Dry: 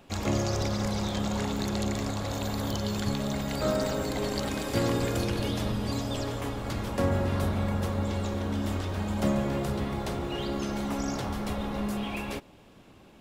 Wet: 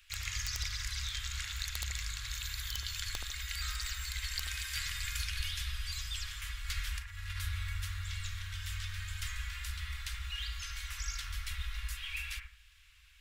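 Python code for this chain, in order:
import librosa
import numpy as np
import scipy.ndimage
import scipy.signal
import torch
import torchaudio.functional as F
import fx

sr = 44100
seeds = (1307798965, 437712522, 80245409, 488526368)

y = fx.over_compress(x, sr, threshold_db=-29.0, ratio=-0.5, at=(6.68, 7.38))
y = scipy.signal.sosfilt(scipy.signal.cheby2(4, 60, [170.0, 650.0], 'bandstop', fs=sr, output='sos'), y)
y = (np.mod(10.0 ** (20.5 / 20.0) * y + 1.0, 2.0) - 1.0) / 10.0 ** (20.5 / 20.0)
y = fx.echo_bbd(y, sr, ms=75, stages=1024, feedback_pct=32, wet_db=-4.0)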